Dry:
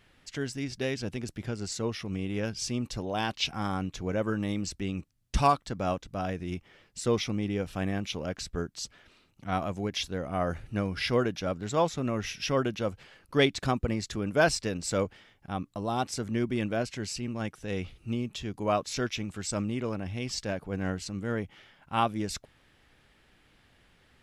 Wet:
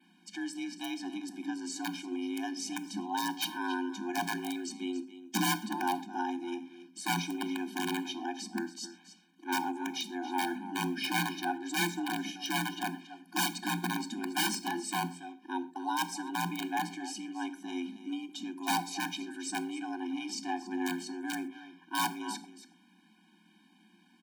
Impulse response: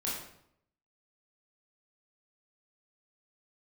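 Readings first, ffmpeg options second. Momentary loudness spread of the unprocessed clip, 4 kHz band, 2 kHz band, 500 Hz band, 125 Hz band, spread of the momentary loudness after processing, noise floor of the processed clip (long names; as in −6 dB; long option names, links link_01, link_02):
9 LU, −1.0 dB, 0.0 dB, −12.5 dB, −12.5 dB, 8 LU, −64 dBFS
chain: -filter_complex "[0:a]aecho=1:1:279:0.2,aeval=exprs='(mod(10*val(0)+1,2)-1)/10':channel_layout=same,afreqshift=170,asplit=2[link_01][link_02];[1:a]atrim=start_sample=2205,atrim=end_sample=6174,lowshelf=frequency=190:gain=11[link_03];[link_02][link_03]afir=irnorm=-1:irlink=0,volume=-15dB[link_04];[link_01][link_04]amix=inputs=2:normalize=0,adynamicequalizer=threshold=0.00316:dfrequency=5900:dqfactor=2.2:tfrequency=5900:tqfactor=2.2:attack=5:release=100:ratio=0.375:range=3:mode=cutabove:tftype=bell,afftfilt=real='re*eq(mod(floor(b*sr/1024/360),2),0)':imag='im*eq(mod(floor(b*sr/1024/360),2),0)':win_size=1024:overlap=0.75,volume=-1.5dB"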